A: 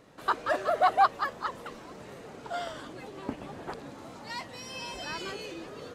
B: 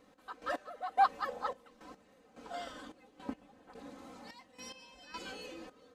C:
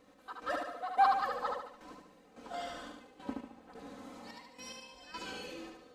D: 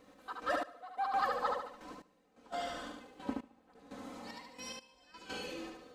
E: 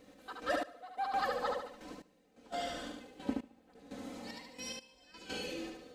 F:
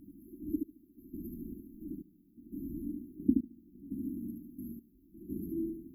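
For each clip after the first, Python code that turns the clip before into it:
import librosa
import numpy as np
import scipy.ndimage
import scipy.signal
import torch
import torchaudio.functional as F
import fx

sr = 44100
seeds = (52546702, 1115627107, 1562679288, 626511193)

y1 = fx.spec_box(x, sr, start_s=1.28, length_s=0.28, low_hz=410.0, high_hz=940.0, gain_db=9)
y1 = y1 + 0.8 * np.pad(y1, (int(3.9 * sr / 1000.0), 0))[:len(y1)]
y1 = fx.step_gate(y1, sr, bpm=108, pattern='x..x...xxx', floor_db=-12.0, edge_ms=4.5)
y1 = y1 * 10.0 ** (-8.5 / 20.0)
y2 = fx.echo_feedback(y1, sr, ms=73, feedback_pct=47, wet_db=-3.5)
y3 = fx.step_gate(y2, sr, bpm=119, pattern='xxxxx....xx', floor_db=-12.0, edge_ms=4.5)
y3 = y3 * 10.0 ** (2.0 / 20.0)
y4 = fx.peak_eq(y3, sr, hz=1100.0, db=-8.5, octaves=0.88)
y4 = y4 * 10.0 ** (3.0 / 20.0)
y5 = fx.brickwall_bandstop(y4, sr, low_hz=390.0, high_hz=11000.0)
y5 = y5 * 10.0 ** (9.0 / 20.0)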